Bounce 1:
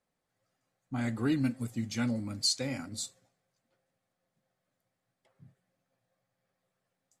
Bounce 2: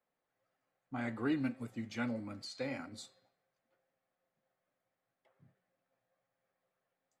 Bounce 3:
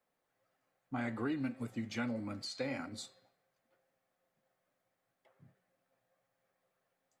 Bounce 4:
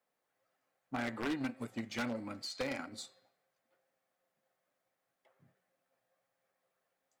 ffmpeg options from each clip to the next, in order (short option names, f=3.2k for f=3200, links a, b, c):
-filter_complex "[0:a]bass=f=250:g=-10,treble=f=4k:g=-15,bandreject=f=189.9:t=h:w=4,bandreject=f=379.8:t=h:w=4,bandreject=f=569.7:t=h:w=4,bandreject=f=759.6:t=h:w=4,bandreject=f=949.5:t=h:w=4,bandreject=f=1.1394k:t=h:w=4,bandreject=f=1.3293k:t=h:w=4,bandreject=f=1.5192k:t=h:w=4,bandreject=f=1.7091k:t=h:w=4,bandreject=f=1.899k:t=h:w=4,bandreject=f=2.0889k:t=h:w=4,bandreject=f=2.2788k:t=h:w=4,bandreject=f=2.4687k:t=h:w=4,bandreject=f=2.6586k:t=h:w=4,bandreject=f=2.8485k:t=h:w=4,bandreject=f=3.0384k:t=h:w=4,bandreject=f=3.2283k:t=h:w=4,bandreject=f=3.4182k:t=h:w=4,bandreject=f=3.6081k:t=h:w=4,bandreject=f=3.798k:t=h:w=4,bandreject=f=3.9879k:t=h:w=4,bandreject=f=4.1778k:t=h:w=4,bandreject=f=4.3677k:t=h:w=4,bandreject=f=4.5576k:t=h:w=4,bandreject=f=4.7475k:t=h:w=4,bandreject=f=4.9374k:t=h:w=4,acrossover=split=310|2200[a][b][c];[c]alimiter=level_in=14dB:limit=-24dB:level=0:latency=1:release=121,volume=-14dB[d];[a][b][d]amix=inputs=3:normalize=0,volume=-1dB"
-af "acompressor=threshold=-37dB:ratio=4,volume=3.5dB"
-af "aeval=exprs='0.0596*(cos(1*acos(clip(val(0)/0.0596,-1,1)))-cos(1*PI/2))+0.0106*(cos(3*acos(clip(val(0)/0.0596,-1,1)))-cos(3*PI/2))+0.000841*(cos(7*acos(clip(val(0)/0.0596,-1,1)))-cos(7*PI/2))':c=same,lowshelf=f=170:g=-10,aeval=exprs='0.0158*(abs(mod(val(0)/0.0158+3,4)-2)-1)':c=same,volume=8dB"